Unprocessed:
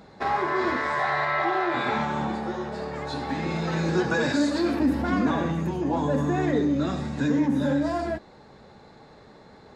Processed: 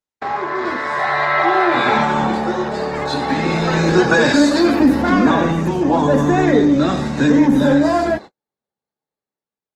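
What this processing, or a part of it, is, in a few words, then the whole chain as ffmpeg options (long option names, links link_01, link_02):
video call: -af "highpass=frequency=170:poles=1,dynaudnorm=framelen=830:gausssize=3:maxgain=9dB,agate=range=-51dB:threshold=-32dB:ratio=16:detection=peak,volume=3dB" -ar 48000 -c:a libopus -b:a 20k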